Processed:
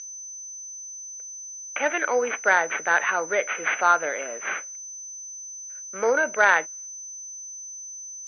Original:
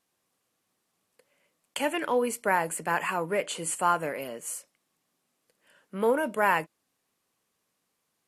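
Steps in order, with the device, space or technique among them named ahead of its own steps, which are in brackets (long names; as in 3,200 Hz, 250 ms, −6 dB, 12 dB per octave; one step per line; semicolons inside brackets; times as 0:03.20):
noise gate −59 dBFS, range −27 dB
toy sound module (linearly interpolated sample-rate reduction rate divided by 8×; switching amplifier with a slow clock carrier 6,100 Hz; loudspeaker in its box 550–4,700 Hz, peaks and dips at 990 Hz −7 dB, 1,500 Hz +8 dB, 2,200 Hz +8 dB, 4,100 Hz −4 dB)
level +7 dB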